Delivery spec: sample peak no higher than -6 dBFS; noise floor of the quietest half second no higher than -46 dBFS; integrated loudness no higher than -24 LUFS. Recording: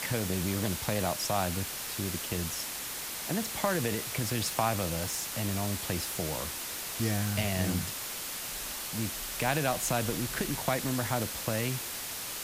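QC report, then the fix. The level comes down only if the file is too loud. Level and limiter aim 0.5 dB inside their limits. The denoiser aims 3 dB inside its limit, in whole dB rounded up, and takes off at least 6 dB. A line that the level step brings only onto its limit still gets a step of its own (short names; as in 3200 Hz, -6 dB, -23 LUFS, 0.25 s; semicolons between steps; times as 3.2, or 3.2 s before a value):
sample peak -12.5 dBFS: OK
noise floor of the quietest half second -38 dBFS: fail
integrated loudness -31.5 LUFS: OK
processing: denoiser 11 dB, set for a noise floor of -38 dBFS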